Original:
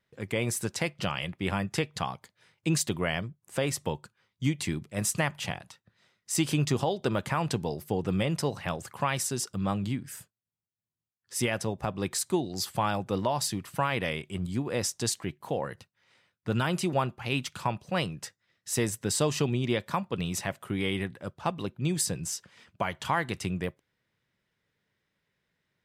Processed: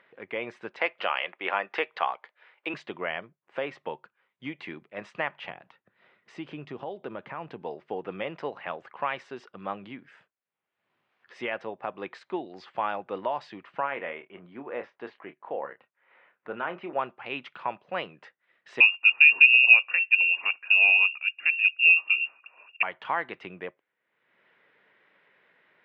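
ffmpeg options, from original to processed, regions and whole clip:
-filter_complex "[0:a]asettb=1/sr,asplit=3[a][b][c];[a]atrim=end=0.814[d];[b]atrim=start=0.81:end=2.74,asetpts=PTS-STARTPTS,afade=t=in:d=0.004:c=qsin,afade=t=out:st=1.926:d=0.004:c=qsin,acontrast=74,highpass=480,lowpass=6.8k[e];[c]atrim=start=2.736[f];[d][e]acrossfade=d=0.004:c1=hsin:c2=qsin[g];[g][f]acrossfade=d=0.004:c1=qsin:c2=hsin,asettb=1/sr,asplit=3[h][i][j];[h]atrim=end=5.504[k];[i]atrim=start=5.5:end=7.62,asetpts=PTS-STARTPTS,afade=t=in:d=0.004:c=qsin,afade=t=out:st=2.116:d=0.004:c=qsin,acompressor=threshold=-48dB:ratio=1.5:attack=3.2:release=140:knee=1:detection=peak,lowshelf=f=320:g=11.5[l];[j]atrim=start=7.616[m];[k][l]acrossfade=d=0.004:c1=hsin:c2=qsin[n];[n][m]acrossfade=d=0.004:c1=qsin:c2=hsin,asettb=1/sr,asplit=3[o][p][q];[o]atrim=end=13.804[r];[p]atrim=start=13.8:end=16.99,asetpts=PTS-STARTPTS,afade=t=in:d=0.004:c=qsin,afade=t=out:st=3.186:d=0.004:c=qsin,lowpass=2.1k,lowshelf=f=150:g=-9.5,asplit=2[s][t];[t]adelay=29,volume=-10dB[u];[s][u]amix=inputs=2:normalize=0,atrim=end_sample=140679[v];[q]atrim=start=16.986[w];[r][v]acrossfade=d=0.004:c1=hsin:c2=qsin[x];[x][w]acrossfade=d=0.004:c1=qsin:c2=hsin,asettb=1/sr,asplit=3[y][z][aa];[y]atrim=end=18.804[ab];[z]atrim=start=18.8:end=22.83,asetpts=PTS-STARTPTS,afade=t=in:d=0.004:c=qsin,afade=t=out:st=4.026:d=0.004:c=qsin,lowshelf=f=560:t=q:w=3:g=10.5,lowpass=f=2.5k:t=q:w=0.5098,lowpass=f=2.5k:t=q:w=0.6013,lowpass=f=2.5k:t=q:w=0.9,lowpass=f=2.5k:t=q:w=2.563,afreqshift=-2900[ac];[aa]atrim=start=22.826[ad];[ab][ac]acrossfade=d=0.004:c1=hsin:c2=qsin[ae];[ae][ad]acrossfade=d=0.004:c1=qsin:c2=hsin,lowpass=f=2.7k:w=0.5412,lowpass=f=2.7k:w=1.3066,acompressor=mode=upward:threshold=-45dB:ratio=2.5,highpass=430"

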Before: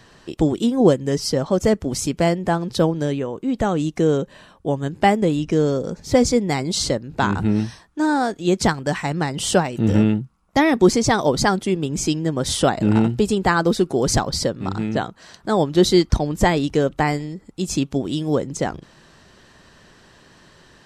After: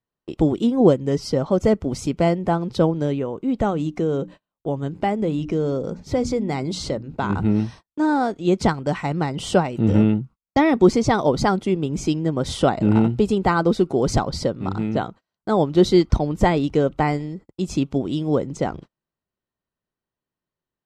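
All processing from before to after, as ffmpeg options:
-filter_complex "[0:a]asettb=1/sr,asplit=3[a][b][c];[a]atrim=end=3.704[d];[b]atrim=start=3.7:end=7.3,asetpts=PTS-STARTPTS,afade=t=in:d=0.004:c=qsin,afade=t=out:st=3.596:d=0.004:c=qsin,bandreject=f=60:t=h:w=6,bandreject=f=120:t=h:w=6,bandreject=f=180:t=h:w=6,bandreject=f=240:t=h:w=6,bandreject=f=300:t=h:w=6,acompressor=threshold=-20dB:ratio=2:attack=3.2:release=140:knee=1:detection=peak[e];[c]atrim=start=7.296[f];[d][e]acrossfade=d=0.004:c1=hsin:c2=qsin[g];[g][f]acrossfade=d=0.004:c1=qsin:c2=hsin,bandreject=f=1.7k:w=7.2,agate=range=-38dB:threshold=-37dB:ratio=16:detection=peak,lowpass=f=2.3k:p=1"

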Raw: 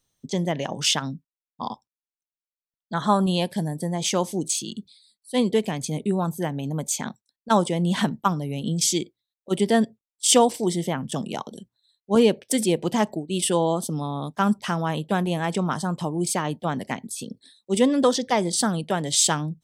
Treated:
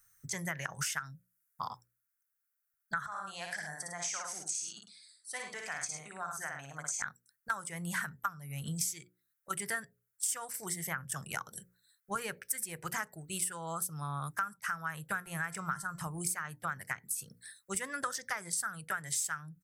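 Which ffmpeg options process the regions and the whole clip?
-filter_complex "[0:a]asettb=1/sr,asplit=3[a][b][c];[a]atrim=end=0.804[d];[b]atrim=start=0.8:end=1.64,asetpts=PTS-STARTPTS,afade=t=in:d=0.004:c=qsin,afade=t=out:st=0.836:d=0.004:c=qsin,acrossover=split=2800[e][f];[f]acompressor=threshold=-28dB:ratio=4:attack=1:release=60[g];[e][g]amix=inputs=2:normalize=0,equalizer=f=11k:w=0.34:g=6.5[h];[c]atrim=start=1.636[i];[d][h]acrossfade=d=0.004:c1=hsin:c2=qsin[j];[j][i]acrossfade=d=0.004:c1=qsin:c2=hsin,asettb=1/sr,asplit=3[k][l][m];[k]atrim=end=3.064[n];[l]atrim=start=3.06:end=7.02,asetpts=PTS-STARTPTS,afade=t=in:d=0.004:c=qsin,afade=t=out:st=3.956:d=0.004:c=qsin,acompressor=threshold=-35dB:ratio=2.5:attack=3.2:release=140:knee=1:detection=peak,highpass=320,equalizer=f=380:t=q:w=4:g=-4,equalizer=f=710:t=q:w=4:g=7,equalizer=f=5.9k:t=q:w=4:g=5,lowpass=f=7.5k:w=0.5412,lowpass=f=7.5k:w=1.3066,aecho=1:1:58|103:0.668|0.398,atrim=end_sample=174636[o];[m]atrim=start=7.016[p];[n][o]acrossfade=d=0.004:c1=hsin:c2=qsin[q];[q][p]acrossfade=d=0.004:c1=qsin:c2=hsin,asettb=1/sr,asplit=3[r][s][t];[r]atrim=end=15.084[u];[s]atrim=start=15.08:end=16.07,asetpts=PTS-STARTPTS,afade=t=in:d=0.004:c=qsin,afade=t=out:st=0.986:d=0.004:c=qsin,lowshelf=f=170:g=6,bandreject=f=343.6:t=h:w=4,bandreject=f=687.2:t=h:w=4,bandreject=f=1.0308k:t=h:w=4,bandreject=f=1.3744k:t=h:w=4,bandreject=f=1.718k:t=h:w=4,bandreject=f=2.0616k:t=h:w=4,bandreject=f=2.4052k:t=h:w=4,bandreject=f=2.7488k:t=h:w=4,bandreject=f=3.0924k:t=h:w=4,bandreject=f=3.436k:t=h:w=4,bandreject=f=3.7796k:t=h:w=4,bandreject=f=4.1232k:t=h:w=4,bandreject=f=4.4668k:t=h:w=4,bandreject=f=4.8104k:t=h:w=4,bandreject=f=5.154k:t=h:w=4,bandreject=f=5.4976k:t=h:w=4,bandreject=f=5.8412k:t=h:w=4,bandreject=f=6.1848k:t=h:w=4,bandreject=f=6.5284k:t=h:w=4,bandreject=f=6.872k:t=h:w=4,bandreject=f=7.2156k:t=h:w=4,bandreject=f=7.5592k:t=h:w=4,bandreject=f=7.9028k:t=h:w=4[v];[t]atrim=start=16.066[w];[u][v]acrossfade=d=0.004:c1=hsin:c2=qsin[x];[x][w]acrossfade=d=0.004:c1=qsin:c2=hsin,firequalizer=gain_entry='entry(130,0);entry(230,-21);entry(360,-16);entry(970,-4);entry(1400,15);entry(3300,-11);entry(5400,2);entry(12000,15)':delay=0.05:min_phase=1,acompressor=threshold=-34dB:ratio=6,bandreject=f=60:t=h:w=6,bandreject=f=120:t=h:w=6,bandreject=f=180:t=h:w=6,bandreject=f=240:t=h:w=6,bandreject=f=300:t=h:w=6,bandreject=f=360:t=h:w=6,bandreject=f=420:t=h:w=6,bandreject=f=480:t=h:w=6,bandreject=f=540:t=h:w=6"

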